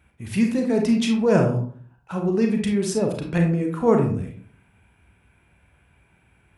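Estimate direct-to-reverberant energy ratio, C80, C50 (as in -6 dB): 2.0 dB, 10.5 dB, 6.0 dB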